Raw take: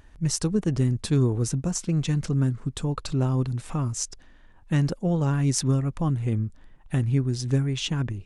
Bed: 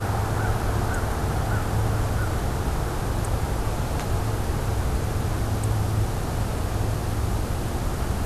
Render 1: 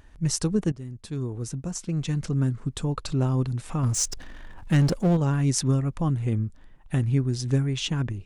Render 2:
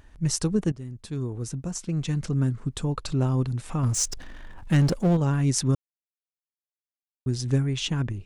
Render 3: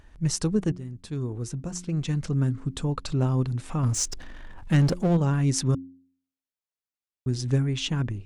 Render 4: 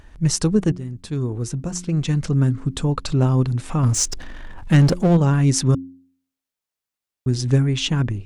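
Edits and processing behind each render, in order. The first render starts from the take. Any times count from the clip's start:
0.72–2.64 s: fade in, from -18 dB; 3.83–5.17 s: power-law waveshaper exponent 0.7
5.75–7.26 s: mute
treble shelf 9.3 kHz -5.5 dB; de-hum 89.02 Hz, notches 4
trim +6.5 dB; peak limiter -3 dBFS, peak gain reduction 1.5 dB

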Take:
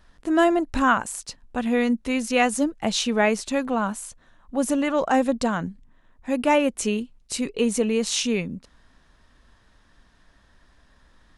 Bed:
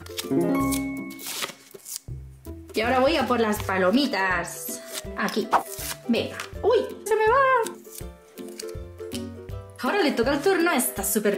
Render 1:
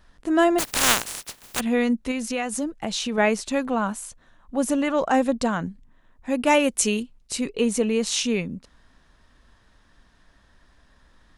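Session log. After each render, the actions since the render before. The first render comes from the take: 0.58–1.59 s: spectral contrast reduction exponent 0.17; 2.11–3.18 s: compression 3:1, threshold -24 dBFS; 6.46–7.03 s: treble shelf 3.1 kHz +9 dB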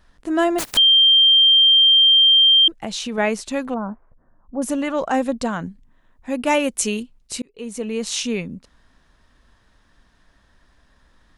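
0.77–2.68 s: bleep 3.17 kHz -9.5 dBFS; 3.74–4.62 s: Gaussian low-pass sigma 7.4 samples; 7.42–8.12 s: fade in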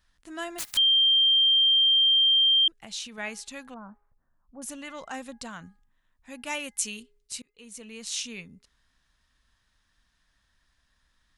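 amplifier tone stack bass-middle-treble 5-5-5; de-hum 413.5 Hz, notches 5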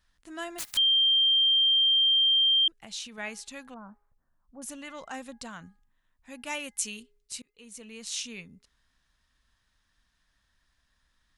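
trim -2 dB

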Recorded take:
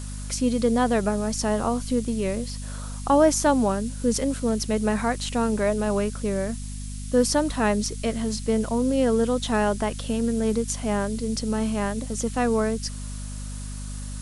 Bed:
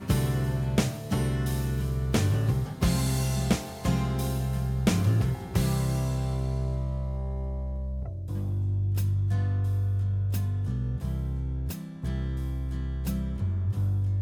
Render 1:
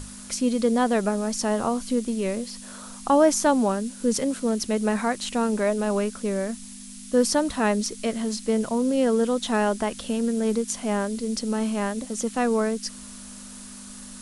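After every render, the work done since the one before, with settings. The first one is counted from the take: hum notches 50/100/150 Hz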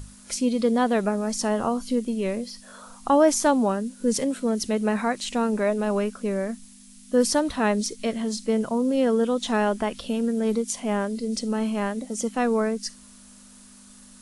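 noise print and reduce 8 dB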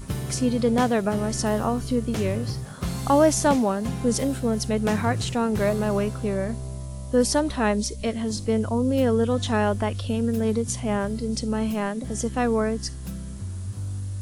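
add bed -4.5 dB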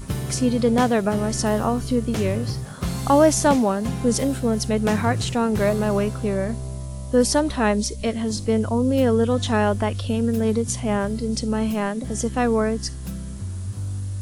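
trim +2.5 dB

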